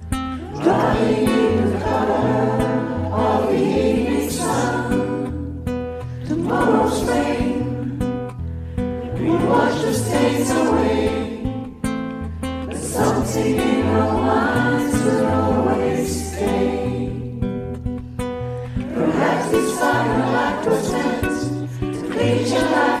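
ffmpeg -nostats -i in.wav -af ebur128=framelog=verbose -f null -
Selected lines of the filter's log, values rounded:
Integrated loudness:
  I:         -20.1 LUFS
  Threshold: -30.1 LUFS
Loudness range:
  LRA:         3.1 LU
  Threshold: -40.2 LUFS
  LRA low:   -21.6 LUFS
  LRA high:  -18.5 LUFS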